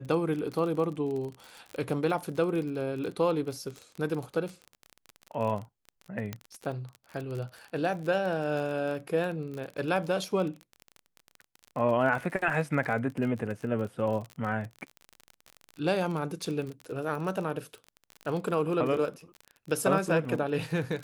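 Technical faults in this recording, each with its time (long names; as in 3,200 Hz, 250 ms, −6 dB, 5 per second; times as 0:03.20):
surface crackle 37 per second −34 dBFS
0:06.33: click −19 dBFS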